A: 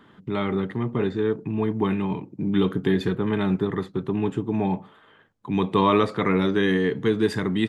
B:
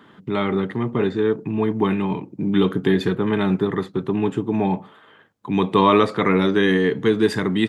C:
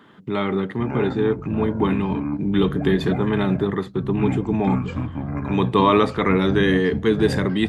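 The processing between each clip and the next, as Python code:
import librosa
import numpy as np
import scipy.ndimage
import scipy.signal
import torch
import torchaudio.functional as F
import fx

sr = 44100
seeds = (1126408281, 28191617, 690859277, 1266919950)

y1 = fx.highpass(x, sr, hz=130.0, slope=6)
y1 = y1 * 10.0 ** (4.5 / 20.0)
y2 = fx.echo_pitch(y1, sr, ms=376, semitones=-7, count=2, db_per_echo=-6.0)
y2 = y2 * 10.0 ** (-1.0 / 20.0)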